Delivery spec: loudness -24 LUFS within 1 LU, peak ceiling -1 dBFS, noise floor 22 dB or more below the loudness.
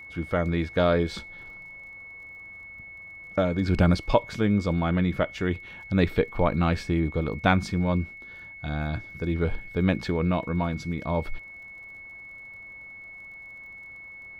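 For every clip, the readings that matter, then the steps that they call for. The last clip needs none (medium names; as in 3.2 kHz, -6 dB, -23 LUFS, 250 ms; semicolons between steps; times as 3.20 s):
tick rate 33 per s; steady tone 2.2 kHz; tone level -41 dBFS; loudness -26.0 LUFS; peak level -5.0 dBFS; loudness target -24.0 LUFS
-> de-click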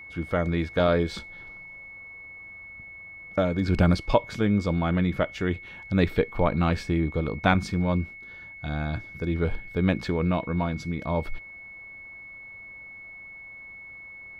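tick rate 0 per s; steady tone 2.2 kHz; tone level -41 dBFS
-> band-stop 2.2 kHz, Q 30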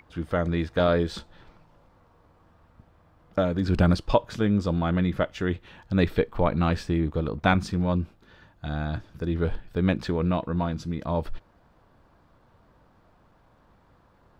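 steady tone not found; loudness -26.5 LUFS; peak level -5.0 dBFS; loudness target -24.0 LUFS
-> trim +2.5 dB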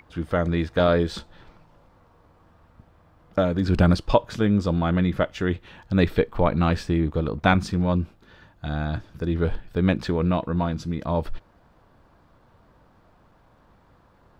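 loudness -24.0 LUFS; peak level -2.5 dBFS; noise floor -58 dBFS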